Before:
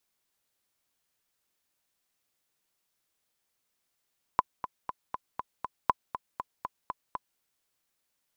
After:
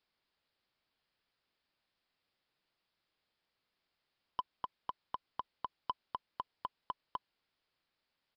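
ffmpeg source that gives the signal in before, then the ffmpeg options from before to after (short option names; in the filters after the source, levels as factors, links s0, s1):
-f lavfi -i "aevalsrc='pow(10,(-8.5-11.5*gte(mod(t,6*60/239),60/239))/20)*sin(2*PI*1010*mod(t,60/239))*exp(-6.91*mod(t,60/239)/0.03)':d=3.01:s=44100"
-af "alimiter=limit=0.15:level=0:latency=1:release=18,aresample=11025,asoftclip=type=tanh:threshold=0.0501,aresample=44100"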